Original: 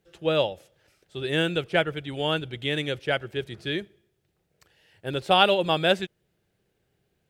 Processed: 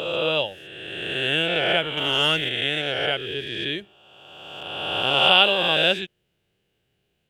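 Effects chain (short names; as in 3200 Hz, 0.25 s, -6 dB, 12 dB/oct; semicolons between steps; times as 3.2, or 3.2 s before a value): spectral swells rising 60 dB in 1.97 s; bell 2900 Hz +10.5 dB 0.53 oct; 1.97–2.49 sample leveller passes 1; gain -4.5 dB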